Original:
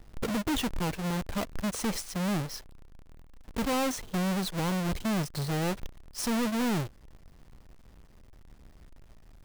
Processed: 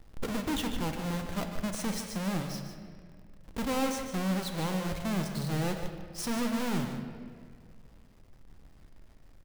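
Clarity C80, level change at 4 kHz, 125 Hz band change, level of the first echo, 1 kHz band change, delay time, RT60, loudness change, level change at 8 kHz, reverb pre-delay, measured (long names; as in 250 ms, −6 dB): 6.0 dB, −2.5 dB, −1.5 dB, −9.5 dB, −2.0 dB, 150 ms, 2.0 s, −2.0 dB, −2.5 dB, 4 ms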